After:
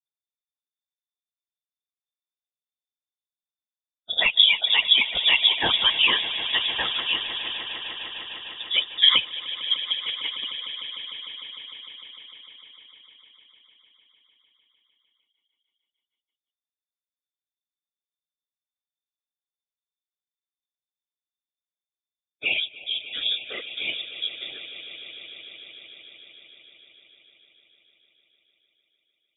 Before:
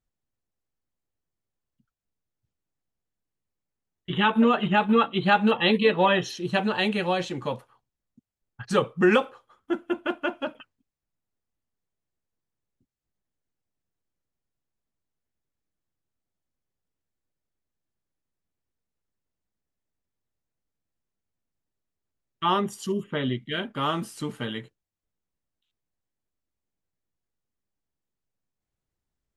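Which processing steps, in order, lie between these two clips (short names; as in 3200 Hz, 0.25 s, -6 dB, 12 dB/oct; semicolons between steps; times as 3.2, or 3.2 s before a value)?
per-bin expansion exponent 2; in parallel at -3 dB: limiter -19.5 dBFS, peak gain reduction 9.5 dB; on the sum: whisperiser; air absorption 170 m; on a send: swelling echo 0.151 s, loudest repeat 5, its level -16.5 dB; on the sum: inverted band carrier 3600 Hz; gain +1 dB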